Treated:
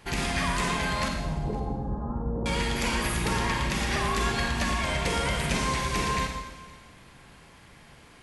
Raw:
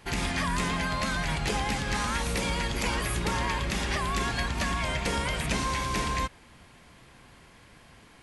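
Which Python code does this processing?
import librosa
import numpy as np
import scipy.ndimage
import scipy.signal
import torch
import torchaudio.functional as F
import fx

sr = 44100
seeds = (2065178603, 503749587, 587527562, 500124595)

y = fx.gaussian_blur(x, sr, sigma=11.0, at=(1.08, 2.46))
y = y + 10.0 ** (-23.0 / 20.0) * np.pad(y, (int(514 * sr / 1000.0), 0))[:len(y)]
y = fx.rev_schroeder(y, sr, rt60_s=1.1, comb_ms=38, drr_db=2.5)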